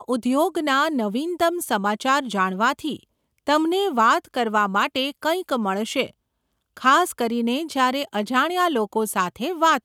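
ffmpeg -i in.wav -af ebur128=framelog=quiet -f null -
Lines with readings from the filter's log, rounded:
Integrated loudness:
  I:         -21.8 LUFS
  Threshold: -32.0 LUFS
Loudness range:
  LRA:         1.2 LU
  Threshold: -42.2 LUFS
  LRA low:   -22.8 LUFS
  LRA high:  -21.5 LUFS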